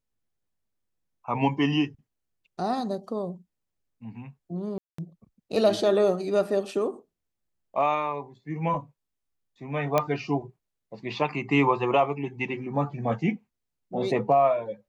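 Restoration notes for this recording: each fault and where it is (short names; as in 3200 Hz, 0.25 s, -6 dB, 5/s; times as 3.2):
4.78–4.98 gap 0.204 s
9.98 pop -9 dBFS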